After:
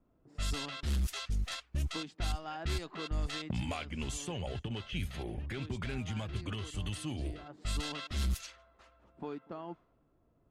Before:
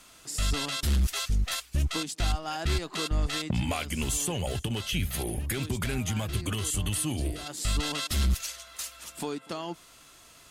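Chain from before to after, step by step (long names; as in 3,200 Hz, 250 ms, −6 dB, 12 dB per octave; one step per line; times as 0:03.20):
low-pass that shuts in the quiet parts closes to 390 Hz, open at −22.5 dBFS
level −7 dB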